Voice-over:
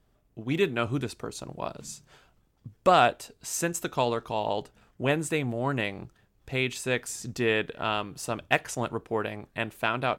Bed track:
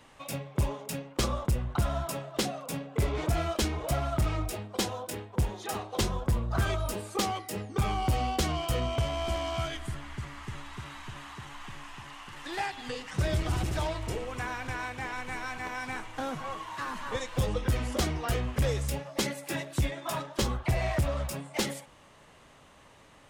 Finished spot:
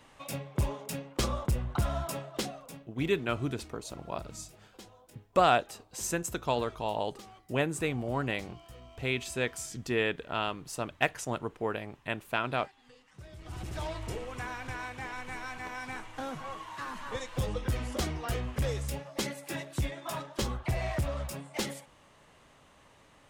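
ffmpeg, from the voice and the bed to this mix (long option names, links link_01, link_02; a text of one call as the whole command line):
ffmpeg -i stem1.wav -i stem2.wav -filter_complex "[0:a]adelay=2500,volume=-3.5dB[link_01];[1:a]volume=16dB,afade=type=out:start_time=2.17:duration=0.74:silence=0.105925,afade=type=in:start_time=13.37:duration=0.6:silence=0.133352[link_02];[link_01][link_02]amix=inputs=2:normalize=0" out.wav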